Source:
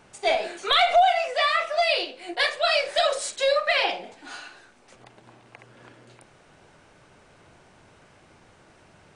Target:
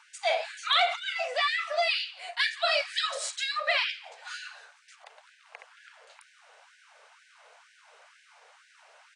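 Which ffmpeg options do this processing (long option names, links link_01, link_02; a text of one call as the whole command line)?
ffmpeg -i in.wav -filter_complex "[0:a]lowpass=8900,lowshelf=frequency=360:gain=-8,asplit=2[link_01][link_02];[link_02]adelay=169.1,volume=-22dB,highshelf=frequency=4000:gain=-3.8[link_03];[link_01][link_03]amix=inputs=2:normalize=0,asplit=2[link_04][link_05];[link_05]acompressor=threshold=-35dB:ratio=6,volume=0dB[link_06];[link_04][link_06]amix=inputs=2:normalize=0,afftfilt=real='re*gte(b*sr/1024,400*pow(1500/400,0.5+0.5*sin(2*PI*2.1*pts/sr)))':imag='im*gte(b*sr/1024,400*pow(1500/400,0.5+0.5*sin(2*PI*2.1*pts/sr)))':win_size=1024:overlap=0.75,volume=-4.5dB" out.wav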